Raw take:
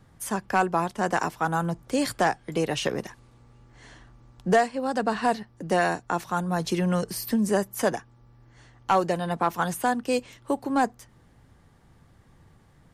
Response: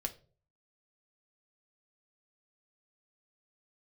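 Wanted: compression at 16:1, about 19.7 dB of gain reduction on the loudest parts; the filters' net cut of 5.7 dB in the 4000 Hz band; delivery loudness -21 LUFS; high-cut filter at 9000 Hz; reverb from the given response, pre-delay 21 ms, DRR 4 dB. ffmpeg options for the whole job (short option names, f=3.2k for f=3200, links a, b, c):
-filter_complex "[0:a]lowpass=9k,equalizer=f=4k:t=o:g=-8,acompressor=threshold=-35dB:ratio=16,asplit=2[a][b];[1:a]atrim=start_sample=2205,adelay=21[c];[b][c]afir=irnorm=-1:irlink=0,volume=-4.5dB[d];[a][d]amix=inputs=2:normalize=0,volume=19dB"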